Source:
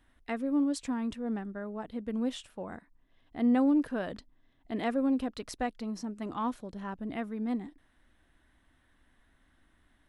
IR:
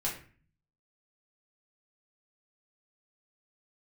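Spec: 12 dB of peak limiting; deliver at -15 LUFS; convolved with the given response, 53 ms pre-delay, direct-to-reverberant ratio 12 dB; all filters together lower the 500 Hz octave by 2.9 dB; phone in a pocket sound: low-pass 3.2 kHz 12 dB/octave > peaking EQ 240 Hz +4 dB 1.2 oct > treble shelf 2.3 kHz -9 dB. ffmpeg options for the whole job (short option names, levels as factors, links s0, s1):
-filter_complex "[0:a]equalizer=f=500:t=o:g=-4,alimiter=level_in=2.11:limit=0.0631:level=0:latency=1,volume=0.473,asplit=2[s0][s1];[1:a]atrim=start_sample=2205,adelay=53[s2];[s1][s2]afir=irnorm=-1:irlink=0,volume=0.15[s3];[s0][s3]amix=inputs=2:normalize=0,lowpass=3200,equalizer=f=240:t=o:w=1.2:g=4,highshelf=f=2300:g=-9,volume=11.2"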